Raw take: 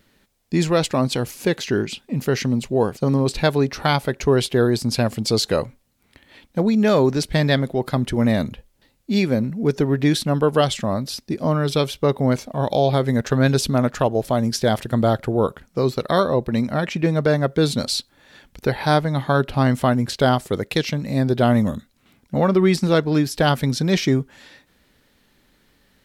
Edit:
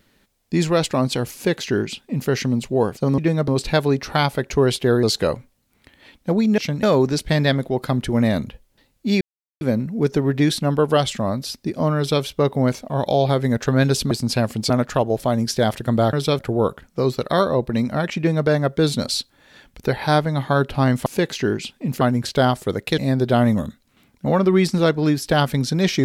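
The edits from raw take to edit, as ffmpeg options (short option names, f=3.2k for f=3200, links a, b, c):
-filter_complex "[0:a]asplit=14[a][b][c][d][e][f][g][h][i][j][k][l][m][n];[a]atrim=end=3.182[o];[b]atrim=start=16.958:end=17.262[p];[c]atrim=start=3.178:end=4.732[q];[d]atrim=start=5.318:end=6.872[r];[e]atrim=start=20.818:end=21.072[s];[f]atrim=start=6.868:end=9.25,asetpts=PTS-STARTPTS,afade=t=out:st=2.378:d=0.004:c=hsin,apad=pad_dur=0.4[t];[g]atrim=start=9.25:end=13.752,asetpts=PTS-STARTPTS,afade=t=in:d=0.004:c=hsin[u];[h]atrim=start=4.728:end=5.322[v];[i]atrim=start=13.748:end=15.182[w];[j]atrim=start=11.608:end=11.872[x];[k]atrim=start=15.178:end=19.852[y];[l]atrim=start=1.338:end=2.292[z];[m]atrim=start=19.848:end=20.822[aa];[n]atrim=start=21.068[ab];[o][p]acrossfade=d=0.004:c1=hsin:c2=hsin[ac];[ac][q]acrossfade=d=0.004:c1=hsin:c2=hsin[ad];[ad][r]acrossfade=d=0.004:c1=hsin:c2=hsin[ae];[ae][s]acrossfade=d=0.004:c1=hsin:c2=hsin[af];[t][u]concat=n=2:v=0:a=1[ag];[af][ag]acrossfade=d=0.004:c1=hsin:c2=hsin[ah];[ah][v]acrossfade=d=0.004:c1=hsin:c2=hsin[ai];[ai][w]acrossfade=d=0.004:c1=hsin:c2=hsin[aj];[aj][x]acrossfade=d=0.004:c1=hsin:c2=hsin[ak];[ak][y]acrossfade=d=0.004:c1=hsin:c2=hsin[al];[al][z]acrossfade=d=0.004:c1=hsin:c2=hsin[am];[am][aa]acrossfade=d=0.004:c1=hsin:c2=hsin[an];[an][ab]acrossfade=d=0.004:c1=hsin:c2=hsin"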